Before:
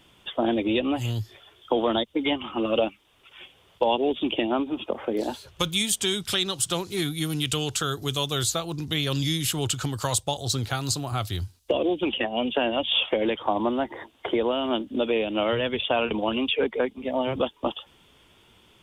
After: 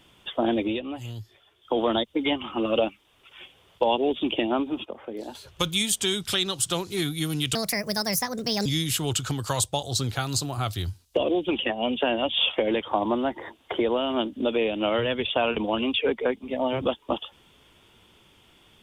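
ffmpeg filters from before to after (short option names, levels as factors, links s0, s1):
-filter_complex "[0:a]asplit=7[s0][s1][s2][s3][s4][s5][s6];[s0]atrim=end=0.8,asetpts=PTS-STARTPTS,afade=t=out:st=0.63:d=0.17:silence=0.375837[s7];[s1]atrim=start=0.8:end=1.62,asetpts=PTS-STARTPTS,volume=0.376[s8];[s2]atrim=start=1.62:end=4.852,asetpts=PTS-STARTPTS,afade=t=in:d=0.17:silence=0.375837[s9];[s3]atrim=start=4.848:end=5.352,asetpts=PTS-STARTPTS,volume=0.376[s10];[s4]atrim=start=5.348:end=7.554[s11];[s5]atrim=start=7.55:end=9.2,asetpts=PTS-STARTPTS,asetrate=65709,aresample=44100[s12];[s6]atrim=start=9.196[s13];[s7][s8][s9]concat=n=3:v=0:a=1[s14];[s14][s10]acrossfade=d=0.004:c1=hsin:c2=hsin[s15];[s15][s11]acrossfade=d=0.004:c1=hsin:c2=hsin[s16];[s16][s12]acrossfade=d=0.004:c1=hsin:c2=hsin[s17];[s17][s13]acrossfade=d=0.004:c1=hsin:c2=hsin"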